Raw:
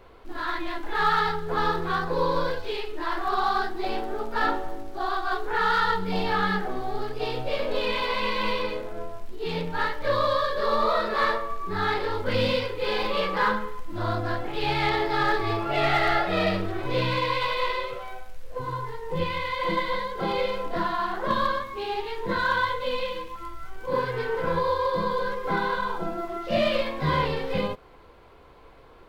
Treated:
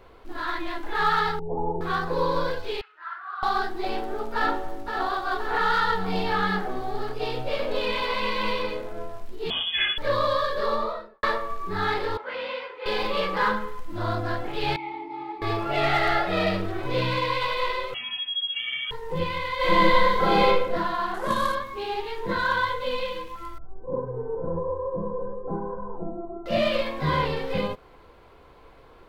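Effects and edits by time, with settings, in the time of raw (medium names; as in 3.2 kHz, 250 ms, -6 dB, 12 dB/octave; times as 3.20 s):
1.39–1.81 s: steep low-pass 900 Hz 72 dB/octave
2.81–3.43 s: ladder band-pass 1.5 kHz, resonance 70%
4.34–5.06 s: echo throw 520 ms, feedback 65%, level -6 dB
9.50–9.98 s: frequency inversion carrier 3.4 kHz
10.58–11.23 s: studio fade out
12.17–12.86 s: band-pass 780–2100 Hz
14.76–15.42 s: vowel filter u
17.94–18.91 s: frequency inversion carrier 3.3 kHz
19.56–20.46 s: reverb throw, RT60 0.92 s, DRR -8 dB
21.14–21.55 s: CVSD coder 64 kbps
23.58–26.46 s: Bessel low-pass 580 Hz, order 6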